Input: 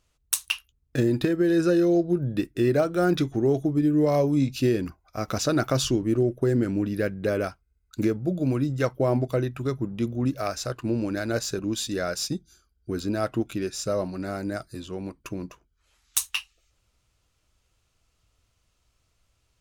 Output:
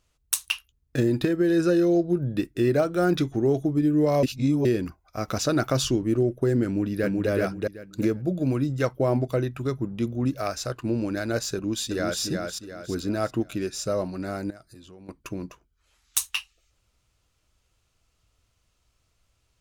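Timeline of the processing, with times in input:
0:04.23–0:04.65: reverse
0:06.65–0:07.29: delay throw 380 ms, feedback 20%, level −1.5 dB
0:11.54–0:12.22: delay throw 360 ms, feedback 40%, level −4 dB
0:14.50–0:15.09: downward compressor 3 to 1, threshold −48 dBFS

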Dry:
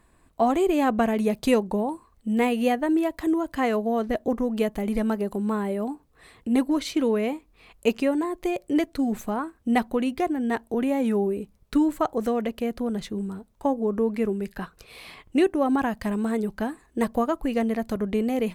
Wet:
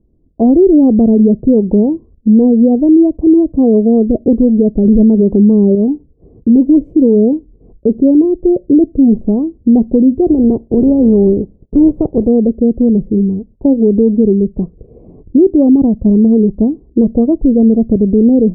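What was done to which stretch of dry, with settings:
0:04.85–0:05.75: clip gain +6.5 dB
0:10.26–0:12.27: compressing power law on the bin magnitudes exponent 0.54
whole clip: noise gate −54 dBFS, range −12 dB; inverse Chebyshev low-pass filter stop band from 1,500 Hz, stop band 60 dB; boost into a limiter +19.5 dB; level −1 dB

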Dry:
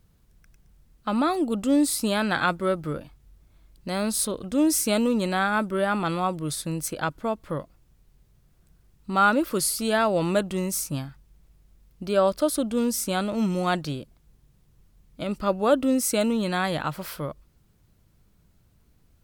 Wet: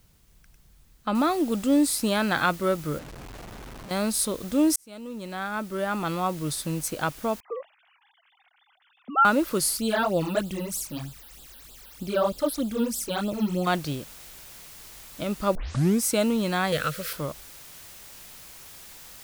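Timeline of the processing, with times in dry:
0:01.15: noise floor change −66 dB −46 dB
0:02.99–0:03.91: comparator with hysteresis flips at −40 dBFS
0:04.76–0:06.47: fade in
0:07.40–0:09.25: three sine waves on the formant tracks
0:09.77–0:13.67: all-pass phaser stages 12, 3.2 Hz, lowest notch 110–2,100 Hz
0:15.55: tape start 0.47 s
0:16.72–0:17.13: drawn EQ curve 160 Hz 0 dB, 330 Hz −8 dB, 490 Hz +10 dB, 890 Hz −20 dB, 1,300 Hz +4 dB

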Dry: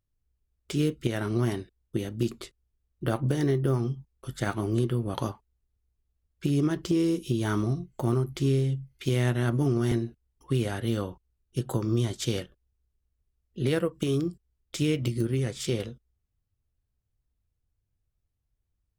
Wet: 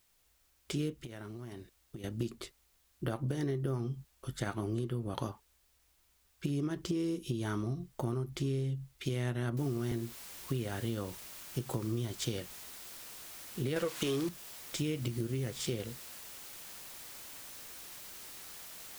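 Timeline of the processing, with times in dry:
0:01.02–0:02.04: downward compressor 10 to 1, threshold −38 dBFS
0:09.57: noise floor change −69 dB −46 dB
0:13.76–0:14.29: mid-hump overdrive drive 18 dB, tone 6,000 Hz, clips at −12.5 dBFS
whole clip: downward compressor 3 to 1, threshold −30 dBFS; level −2.5 dB

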